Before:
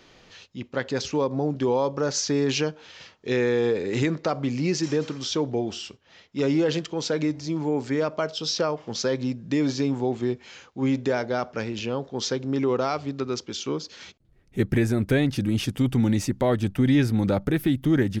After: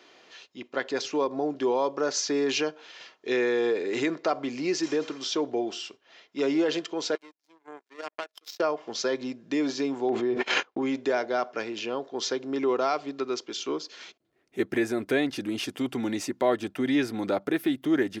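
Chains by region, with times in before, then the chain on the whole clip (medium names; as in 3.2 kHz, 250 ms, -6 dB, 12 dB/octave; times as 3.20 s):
7.15–8.60 s: high-pass 370 Hz + power-law waveshaper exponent 3
10.09–10.82 s: low-pass 1.8 kHz 6 dB/octave + gate -48 dBFS, range -46 dB + level flattener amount 100%
whole clip: high-pass 350 Hz 12 dB/octave; treble shelf 5.8 kHz -5.5 dB; comb 2.9 ms, depth 30%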